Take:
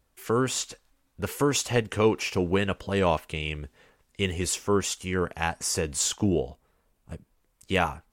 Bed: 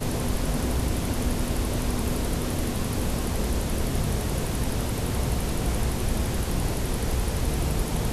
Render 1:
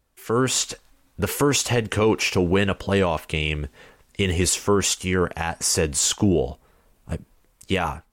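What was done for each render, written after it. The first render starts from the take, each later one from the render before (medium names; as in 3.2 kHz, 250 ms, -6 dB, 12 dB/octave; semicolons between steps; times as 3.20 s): level rider gain up to 10.5 dB; peak limiter -10.5 dBFS, peak gain reduction 8.5 dB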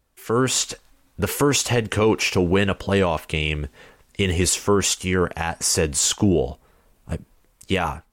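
trim +1 dB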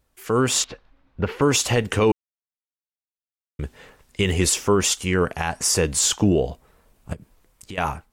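0.64–1.42 s: distance through air 310 m; 2.12–3.59 s: mute; 7.13–7.78 s: compression 5:1, threshold -34 dBFS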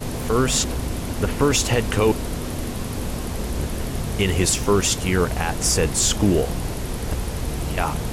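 add bed -0.5 dB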